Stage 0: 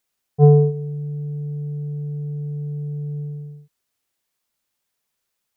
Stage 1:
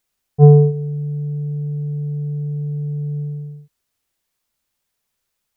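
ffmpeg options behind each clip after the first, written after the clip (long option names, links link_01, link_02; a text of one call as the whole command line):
ffmpeg -i in.wav -af "lowshelf=frequency=84:gain=10,volume=1.5dB" out.wav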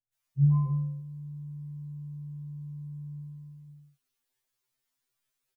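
ffmpeg -i in.wav -filter_complex "[0:a]acrossover=split=170|610[link_01][link_02][link_03];[link_03]adelay=130[link_04];[link_02]adelay=270[link_05];[link_01][link_05][link_04]amix=inputs=3:normalize=0,afftfilt=real='re*2.45*eq(mod(b,6),0)':imag='im*2.45*eq(mod(b,6),0)':win_size=2048:overlap=0.75,volume=-4.5dB" out.wav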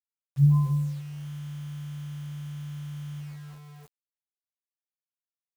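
ffmpeg -i in.wav -af "acrusher=bits=8:mix=0:aa=0.000001,volume=3dB" out.wav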